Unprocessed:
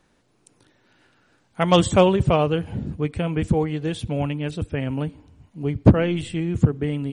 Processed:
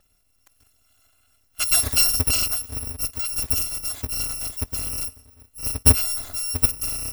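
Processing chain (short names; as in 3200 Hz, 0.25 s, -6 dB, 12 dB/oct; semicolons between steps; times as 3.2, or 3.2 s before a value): FFT order left unsorted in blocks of 256 samples; tilt shelf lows +3.5 dB, about 830 Hz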